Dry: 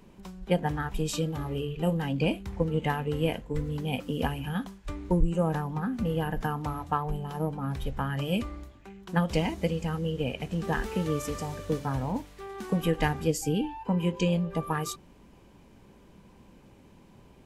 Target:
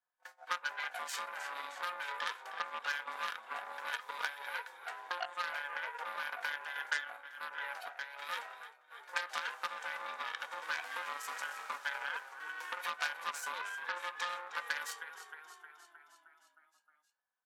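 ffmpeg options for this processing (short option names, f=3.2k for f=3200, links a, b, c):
-filter_complex "[0:a]flanger=delay=7.9:depth=5.7:regen=-71:speed=0.24:shape=sinusoidal,aeval=exprs='val(0)*sin(2*PI*710*n/s)':c=same,agate=range=-30dB:threshold=-52dB:ratio=16:detection=peak,equalizer=f=1.6k:w=2.8:g=12,aecho=1:1:4:0.36,asplit=8[a][b][c][d][e][f][g][h];[b]adelay=311,afreqshift=-37,volume=-13.5dB[i];[c]adelay=622,afreqshift=-74,volume=-17.4dB[j];[d]adelay=933,afreqshift=-111,volume=-21.3dB[k];[e]adelay=1244,afreqshift=-148,volume=-25.1dB[l];[f]adelay=1555,afreqshift=-185,volume=-29dB[m];[g]adelay=1866,afreqshift=-222,volume=-32.9dB[n];[h]adelay=2177,afreqshift=-259,volume=-36.8dB[o];[a][i][j][k][l][m][n][o]amix=inputs=8:normalize=0,aeval=exprs='0.224*(cos(1*acos(clip(val(0)/0.224,-1,1)))-cos(1*PI/2))+0.112*(cos(2*acos(clip(val(0)/0.224,-1,1)))-cos(2*PI/2))+0.00891*(cos(7*acos(clip(val(0)/0.224,-1,1)))-cos(7*PI/2))+0.0316*(cos(8*acos(clip(val(0)/0.224,-1,1)))-cos(8*PI/2))':c=same,asplit=3[p][q][r];[p]afade=t=out:st=6.63:d=0.02[s];[q]tremolo=f=1.3:d=0.73,afade=t=in:st=6.63:d=0.02,afade=t=out:st=8.9:d=0.02[t];[r]afade=t=in:st=8.9:d=0.02[u];[s][t][u]amix=inputs=3:normalize=0,acompressor=threshold=-34dB:ratio=3,highpass=1.2k,volume=3.5dB"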